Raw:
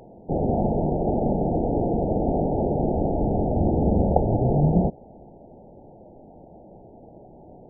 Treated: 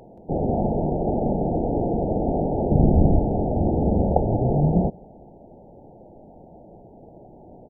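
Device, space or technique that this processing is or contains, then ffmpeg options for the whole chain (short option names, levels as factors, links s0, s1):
ducked delay: -filter_complex "[0:a]asplit=3[s0][s1][s2];[s1]adelay=176,volume=0.376[s3];[s2]apad=whole_len=346952[s4];[s3][s4]sidechaincompress=threshold=0.01:ratio=8:attack=16:release=575[s5];[s0][s5]amix=inputs=2:normalize=0,asettb=1/sr,asplit=3[s6][s7][s8];[s6]atrim=end=2.714[s9];[s7]atrim=start=2.71:end=3.19,asetpts=PTS-STARTPTS,afade=t=in:d=0.004:c=qsin,afade=t=out:st=0.476:d=0.004:c=qsin,bass=f=250:g=11,treble=f=4000:g=12[s10];[s8]atrim=start=3.186[s11];[s9][s10]acrossfade=d=0.004:c1=hsin:c2=qsin[s12];[s12][s11]acrossfade=d=0.004:c1=qsin:c2=hsin"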